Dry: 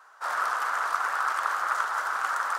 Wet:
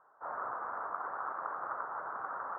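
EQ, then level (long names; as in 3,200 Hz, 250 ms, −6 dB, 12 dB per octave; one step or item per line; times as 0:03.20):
Gaussian smoothing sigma 7.7 samples
high-frequency loss of the air 270 metres
low-shelf EQ 270 Hz +9.5 dB
−2.5 dB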